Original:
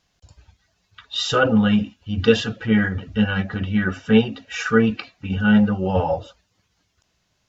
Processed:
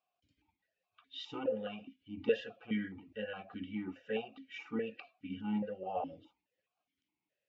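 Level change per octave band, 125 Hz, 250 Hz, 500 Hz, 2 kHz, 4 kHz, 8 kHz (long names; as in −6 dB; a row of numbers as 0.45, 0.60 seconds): −26.5 dB, −21.5 dB, −16.0 dB, −23.0 dB, −21.0 dB, can't be measured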